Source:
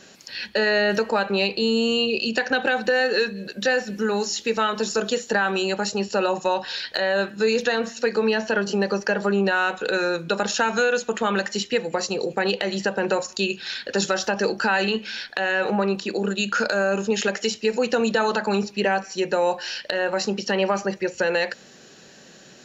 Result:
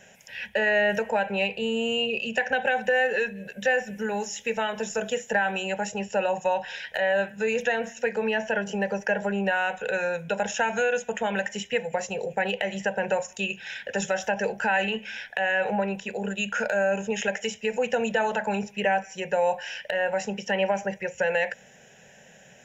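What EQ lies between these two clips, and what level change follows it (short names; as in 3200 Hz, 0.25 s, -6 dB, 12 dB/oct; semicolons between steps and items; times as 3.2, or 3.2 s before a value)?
fixed phaser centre 1200 Hz, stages 6; 0.0 dB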